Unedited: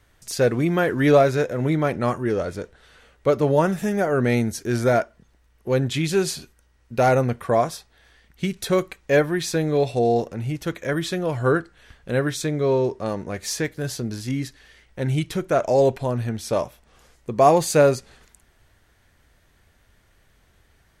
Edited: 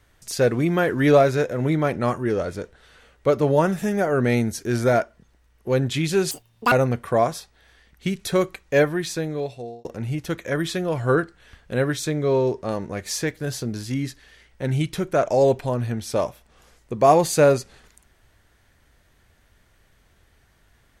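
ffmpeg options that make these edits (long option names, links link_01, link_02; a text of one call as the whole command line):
ffmpeg -i in.wav -filter_complex "[0:a]asplit=4[link_01][link_02][link_03][link_04];[link_01]atrim=end=6.314[link_05];[link_02]atrim=start=6.31:end=7.09,asetpts=PTS-STARTPTS,asetrate=84231,aresample=44100,atrim=end_sample=18009,asetpts=PTS-STARTPTS[link_06];[link_03]atrim=start=7.086:end=10.22,asetpts=PTS-STARTPTS,afade=type=out:start_time=2.104:duration=1.03[link_07];[link_04]atrim=start=10.22,asetpts=PTS-STARTPTS,afade=type=in:duration=0.004:curve=hsin[link_08];[link_05][link_06]acrossfade=duration=0.004:curve1=hsin:curve2=hsin[link_09];[link_07][link_08]concat=n=2:v=0:a=1[link_10];[link_09][link_10]acrossfade=duration=0.004:curve1=hsin:curve2=hsin" out.wav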